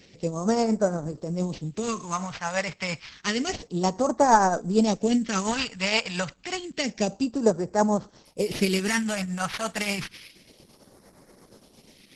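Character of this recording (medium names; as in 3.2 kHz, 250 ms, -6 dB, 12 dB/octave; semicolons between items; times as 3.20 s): aliases and images of a low sample rate 7.5 kHz, jitter 0%; tremolo triangle 8.6 Hz, depth 55%; phasing stages 2, 0.29 Hz, lowest notch 340–2700 Hz; Opus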